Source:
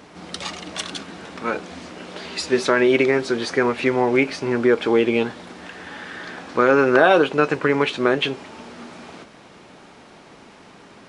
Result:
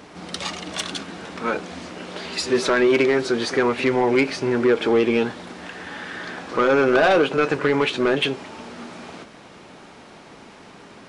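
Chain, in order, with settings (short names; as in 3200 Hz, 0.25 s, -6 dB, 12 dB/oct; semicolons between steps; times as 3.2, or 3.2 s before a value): pre-echo 56 ms -17 dB; soft clip -12 dBFS, distortion -13 dB; gain +1.5 dB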